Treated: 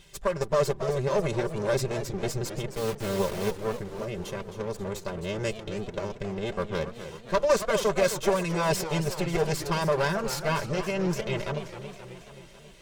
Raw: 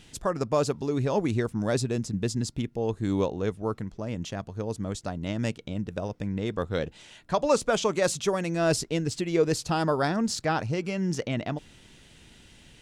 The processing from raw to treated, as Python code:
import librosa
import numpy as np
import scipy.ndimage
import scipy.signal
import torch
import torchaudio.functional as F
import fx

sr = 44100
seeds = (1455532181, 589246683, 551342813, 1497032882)

y = fx.lower_of_two(x, sr, delay_ms=1.9)
y = fx.quant_dither(y, sr, seeds[0], bits=6, dither='none', at=(2.75, 3.51))
y = y + 0.59 * np.pad(y, (int(5.1 * sr / 1000.0), 0))[:len(y)]
y = fx.echo_warbled(y, sr, ms=269, feedback_pct=63, rate_hz=2.8, cents=206, wet_db=-11.0)
y = F.gain(torch.from_numpy(y), -1.5).numpy()